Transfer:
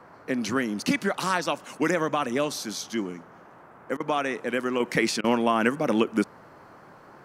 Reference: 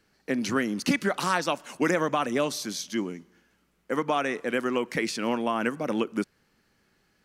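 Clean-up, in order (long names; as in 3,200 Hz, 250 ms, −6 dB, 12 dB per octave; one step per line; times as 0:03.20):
repair the gap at 0:03.97/0:05.21, 30 ms
noise reduction from a noise print 18 dB
level correction −4.5 dB, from 0:04.80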